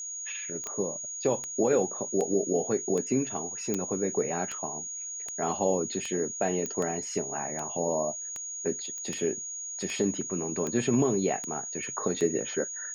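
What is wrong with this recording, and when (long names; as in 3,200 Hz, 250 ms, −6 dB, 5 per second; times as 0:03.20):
scratch tick 78 rpm −20 dBFS
whistle 6,700 Hz −35 dBFS
0:00.64: click −26 dBFS
0:03.74: click −16 dBFS
0:06.66: click −19 dBFS
0:08.98: click −26 dBFS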